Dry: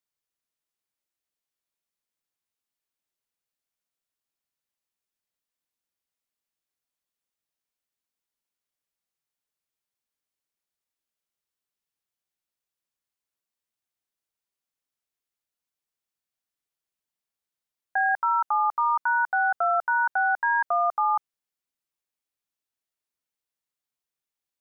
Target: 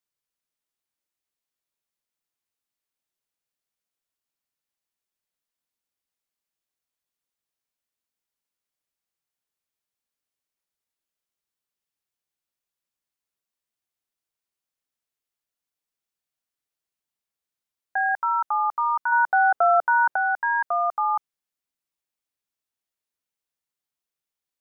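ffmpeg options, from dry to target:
ffmpeg -i in.wav -filter_complex "[0:a]asettb=1/sr,asplit=3[link_01][link_02][link_03];[link_01]atrim=end=19.124[link_04];[link_02]atrim=start=19.12:end=20.16,asetpts=PTS-STARTPTS,afade=type=in:duration=0.004:curve=qsin,afade=type=out:start_time=1.036:duration=0.004:curve=qsin,equalizer=frequency=430:width=0.44:gain=8[link_05];[link_03]atrim=start=20.156[link_06];[link_04][link_05]acrossfade=duration=0.004:curve1=hsin:curve2=qsin[link_07];[link_07][link_06]acrossfade=duration=0.004:curve1=qsin:curve2=hsin" out.wav

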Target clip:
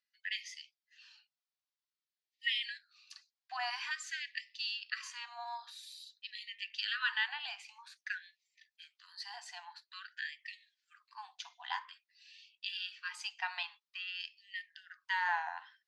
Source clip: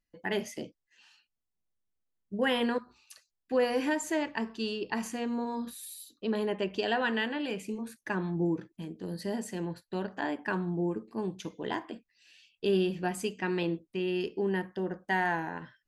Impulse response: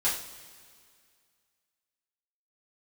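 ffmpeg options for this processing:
-af "aphaser=in_gain=1:out_gain=1:delay=4.2:decay=0.25:speed=0.13:type=triangular,lowpass=frequency=4700:width_type=q:width=2.1,afftfilt=real='re*gte(b*sr/1024,660*pow(1800/660,0.5+0.5*sin(2*PI*0.5*pts/sr)))':imag='im*gte(b*sr/1024,660*pow(1800/660,0.5+0.5*sin(2*PI*0.5*pts/sr)))':win_size=1024:overlap=0.75,volume=-3dB"

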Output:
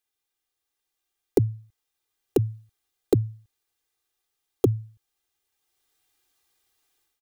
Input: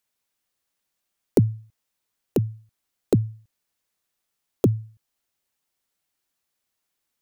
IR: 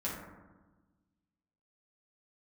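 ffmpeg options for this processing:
-af "equalizer=frequency=3600:width=4.1:gain=3,aecho=1:1:2.5:0.76,dynaudnorm=framelen=500:gausssize=3:maxgain=12dB,volume=-6.5dB"

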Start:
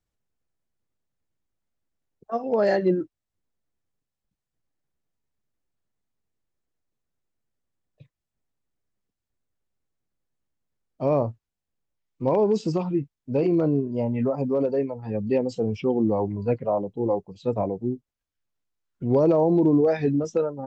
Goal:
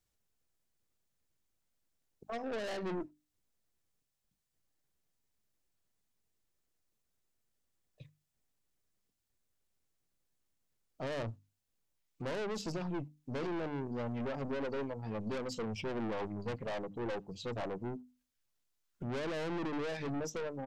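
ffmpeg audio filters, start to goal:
ffmpeg -i in.wav -filter_complex "[0:a]aeval=exprs='(tanh(28.2*val(0)+0.45)-tanh(0.45))/28.2':channel_layout=same,highshelf=frequency=2800:gain=8,alimiter=level_in=7.5dB:limit=-24dB:level=0:latency=1:release=250,volume=-7.5dB,bandreject=frequency=50:width_type=h:width=6,bandreject=frequency=100:width_type=h:width=6,bandreject=frequency=150:width_type=h:width=6,bandreject=frequency=200:width_type=h:width=6,bandreject=frequency=250:width_type=h:width=6,bandreject=frequency=300:width_type=h:width=6,asplit=2[link_01][link_02];[link_02]adelay=80,highpass=300,lowpass=3400,asoftclip=type=hard:threshold=-38dB,volume=-28dB[link_03];[link_01][link_03]amix=inputs=2:normalize=0" out.wav

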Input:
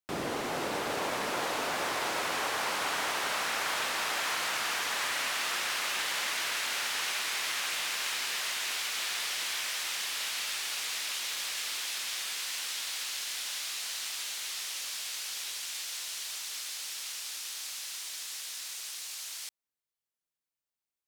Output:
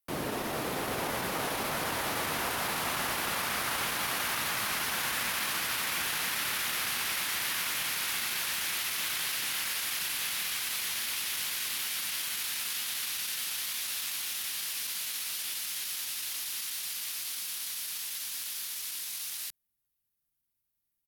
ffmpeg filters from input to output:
ffmpeg -i in.wav -af "asetrate=39289,aresample=44100,atempo=1.12246,aexciter=amount=3:drive=6.7:freq=10000,asubboost=boost=5:cutoff=220" out.wav

